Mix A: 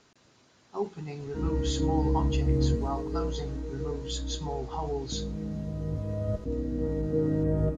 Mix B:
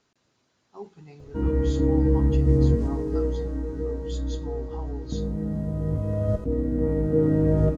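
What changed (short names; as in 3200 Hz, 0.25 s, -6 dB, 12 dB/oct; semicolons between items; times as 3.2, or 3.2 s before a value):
speech -8.5 dB; background +6.0 dB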